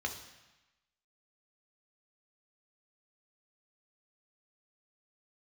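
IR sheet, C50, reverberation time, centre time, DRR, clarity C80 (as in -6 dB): 9.0 dB, 1.1 s, 19 ms, 3.0 dB, 11.5 dB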